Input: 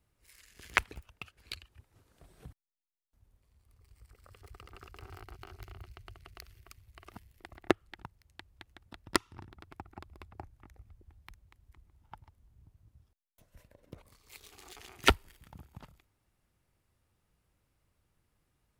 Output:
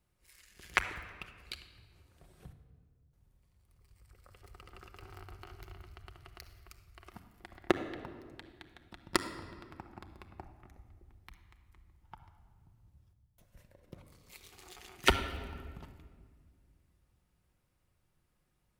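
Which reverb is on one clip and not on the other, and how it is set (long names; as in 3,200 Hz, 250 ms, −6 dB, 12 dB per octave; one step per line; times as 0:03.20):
rectangular room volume 2,600 cubic metres, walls mixed, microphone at 0.96 metres
level −2 dB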